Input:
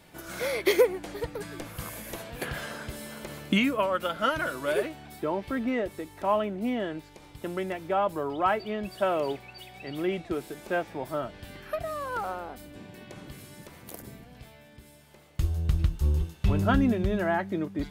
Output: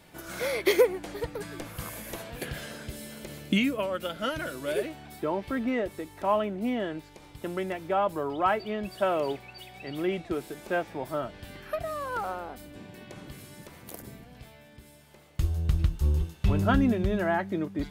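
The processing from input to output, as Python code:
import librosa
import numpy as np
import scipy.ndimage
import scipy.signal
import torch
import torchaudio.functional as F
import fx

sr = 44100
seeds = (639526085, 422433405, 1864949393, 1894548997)

y = fx.peak_eq(x, sr, hz=1100.0, db=-8.5, octaves=1.3, at=(2.39, 4.88))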